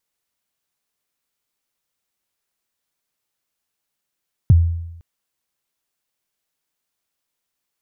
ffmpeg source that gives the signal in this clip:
ffmpeg -f lavfi -i "aevalsrc='0.562*pow(10,-3*t/0.89)*sin(2*PI*(150*0.025/log(84/150)*(exp(log(84/150)*min(t,0.025)/0.025)-1)+84*max(t-0.025,0)))':duration=0.51:sample_rate=44100" out.wav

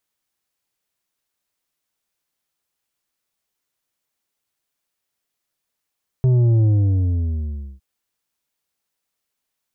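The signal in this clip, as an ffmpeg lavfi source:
ffmpeg -f lavfi -i "aevalsrc='0.224*clip((1.56-t)/1.16,0,1)*tanh(2.24*sin(2*PI*130*1.56/log(65/130)*(exp(log(65/130)*t/1.56)-1)))/tanh(2.24)':duration=1.56:sample_rate=44100" out.wav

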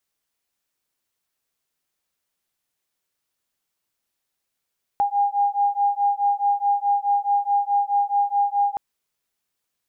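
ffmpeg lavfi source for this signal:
ffmpeg -f lavfi -i "aevalsrc='0.0891*(sin(2*PI*808*t)+sin(2*PI*812.7*t))':duration=3.77:sample_rate=44100" out.wav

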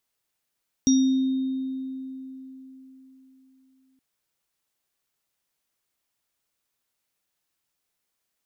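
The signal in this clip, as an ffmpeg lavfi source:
ffmpeg -f lavfi -i "aevalsrc='0.178*pow(10,-3*t/3.95)*sin(2*PI*263*t)+0.0237*pow(10,-3*t/1.78)*sin(2*PI*3700*t)+0.0891*pow(10,-3*t/0.46)*sin(2*PI*5710*t)':duration=3.12:sample_rate=44100" out.wav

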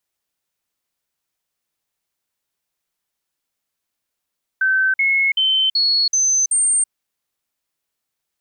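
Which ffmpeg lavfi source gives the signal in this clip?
ffmpeg -f lavfi -i "aevalsrc='0.211*clip(min(mod(t,0.38),0.33-mod(t,0.38))/0.005,0,1)*sin(2*PI*1540*pow(2,floor(t/0.38)/2)*mod(t,0.38))':duration=2.28:sample_rate=44100" out.wav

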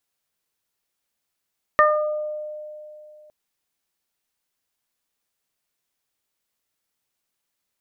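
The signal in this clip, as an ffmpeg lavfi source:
ffmpeg -f lavfi -i "aevalsrc='0.158*pow(10,-3*t/2.91)*sin(2*PI*606*t)+0.282*pow(10,-3*t/0.67)*sin(2*PI*1212*t)+0.178*pow(10,-3*t/0.3)*sin(2*PI*1818*t)':duration=1.51:sample_rate=44100" out.wav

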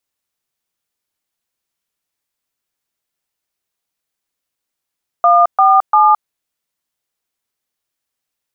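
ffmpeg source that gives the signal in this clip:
ffmpeg -f lavfi -i "aevalsrc='0.355*clip(min(mod(t,0.346),0.217-mod(t,0.346))/0.002,0,1)*(eq(floor(t/0.346),0)*(sin(2*PI*697*mod(t,0.346))+sin(2*PI*1209*mod(t,0.346)))+eq(floor(t/0.346),1)*(sin(2*PI*770*mod(t,0.346))+sin(2*PI*1209*mod(t,0.346)))+eq(floor(t/0.346),2)*(sin(2*PI*852*mod(t,0.346))+sin(2*PI*1209*mod(t,0.346))))':duration=1.038:sample_rate=44100" out.wav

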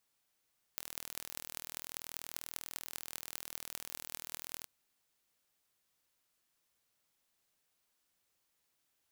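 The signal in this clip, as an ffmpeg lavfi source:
ffmpeg -f lavfi -i "aevalsrc='0.282*eq(mod(n,1092),0)*(0.5+0.5*eq(mod(n,8736),0))':duration=3.88:sample_rate=44100" out.wav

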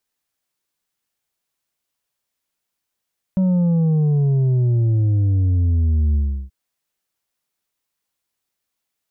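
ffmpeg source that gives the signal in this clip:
ffmpeg -f lavfi -i "aevalsrc='0.188*clip((3.13-t)/0.35,0,1)*tanh(1.78*sin(2*PI*190*3.13/log(65/190)*(exp(log(65/190)*t/3.13)-1)))/tanh(1.78)':duration=3.13:sample_rate=44100" out.wav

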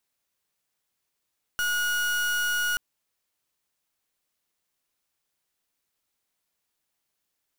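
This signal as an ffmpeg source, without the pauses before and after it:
ffmpeg -f lavfi -i "aevalsrc='0.0501*(2*lt(mod(1450*t,1),0.37)-1)':duration=1.18:sample_rate=44100" out.wav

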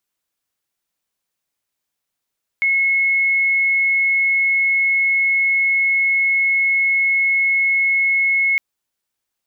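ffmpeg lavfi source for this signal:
ffmpeg -f lavfi -i "aevalsrc='0.211*sin(2*PI*2180*t)':duration=5.96:sample_rate=44100" out.wav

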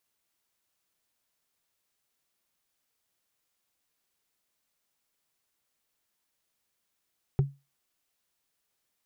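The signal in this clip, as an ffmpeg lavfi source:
ffmpeg -f lavfi -i "aevalsrc='0.15*pow(10,-3*t/0.25)*sin(2*PI*139*t)+0.0531*pow(10,-3*t/0.074)*sin(2*PI*383.2*t)+0.0188*pow(10,-3*t/0.033)*sin(2*PI*751.2*t)+0.00668*pow(10,-3*t/0.018)*sin(2*PI*1241.7*t)+0.00237*pow(10,-3*t/0.011)*sin(2*PI*1854.3*t)':duration=0.45:sample_rate=44100" out.wav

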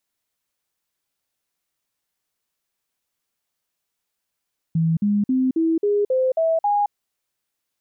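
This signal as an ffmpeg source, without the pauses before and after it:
ffmpeg -f lavfi -i "aevalsrc='0.158*clip(min(mod(t,0.27),0.22-mod(t,0.27))/0.005,0,1)*sin(2*PI*163*pow(2,floor(t/0.27)/3)*mod(t,0.27))':duration=2.16:sample_rate=44100" out.wav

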